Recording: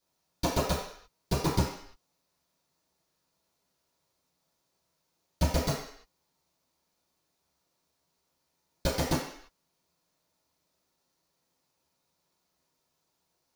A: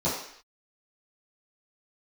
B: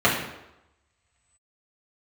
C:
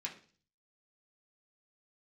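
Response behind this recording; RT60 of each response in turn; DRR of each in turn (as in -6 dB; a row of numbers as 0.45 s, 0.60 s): A; no single decay rate, 0.90 s, 0.40 s; -11.5 dB, -7.5 dB, -3.5 dB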